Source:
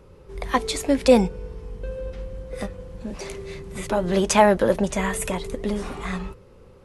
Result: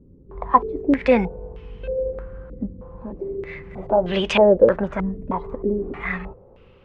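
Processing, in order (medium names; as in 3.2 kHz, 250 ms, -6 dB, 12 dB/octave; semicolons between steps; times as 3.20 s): step-sequenced low-pass 3.2 Hz 260–2900 Hz; trim -2 dB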